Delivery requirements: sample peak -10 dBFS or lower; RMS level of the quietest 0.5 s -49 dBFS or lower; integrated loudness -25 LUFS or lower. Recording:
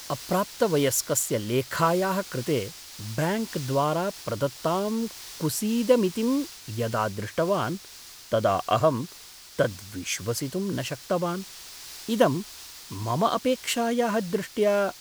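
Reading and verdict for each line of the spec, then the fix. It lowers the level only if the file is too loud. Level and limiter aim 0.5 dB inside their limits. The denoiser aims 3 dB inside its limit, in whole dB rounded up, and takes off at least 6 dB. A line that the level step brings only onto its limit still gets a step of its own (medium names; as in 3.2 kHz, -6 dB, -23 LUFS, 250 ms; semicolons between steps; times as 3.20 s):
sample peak -6.0 dBFS: fail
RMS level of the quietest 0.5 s -47 dBFS: fail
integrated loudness -26.5 LUFS: pass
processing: noise reduction 6 dB, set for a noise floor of -47 dBFS; peak limiter -10.5 dBFS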